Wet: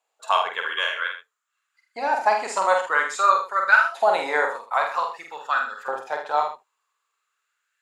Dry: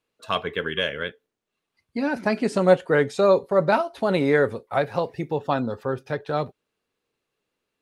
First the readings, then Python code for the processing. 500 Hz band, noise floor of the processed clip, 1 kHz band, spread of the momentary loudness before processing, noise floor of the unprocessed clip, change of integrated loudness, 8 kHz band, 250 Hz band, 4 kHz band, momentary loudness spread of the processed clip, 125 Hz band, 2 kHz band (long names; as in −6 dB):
−6.0 dB, −78 dBFS, +7.0 dB, 10 LU, −82 dBFS, +1.0 dB, can't be measured, −19.5 dB, +1.5 dB, 12 LU, below −30 dB, +7.0 dB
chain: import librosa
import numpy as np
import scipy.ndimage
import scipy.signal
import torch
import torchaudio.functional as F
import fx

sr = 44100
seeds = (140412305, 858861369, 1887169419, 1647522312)

y = fx.peak_eq(x, sr, hz=7200.0, db=14.5, octaves=0.23)
y = fx.filter_lfo_highpass(y, sr, shape='saw_up', hz=0.51, low_hz=740.0, high_hz=1600.0, q=4.8)
y = fx.doubler(y, sr, ms=47.0, db=-4.0)
y = y + 10.0 ** (-9.5 / 20.0) * np.pad(y, (int(78 * sr / 1000.0), 0))[:len(y)]
y = y * 10.0 ** (-1.5 / 20.0)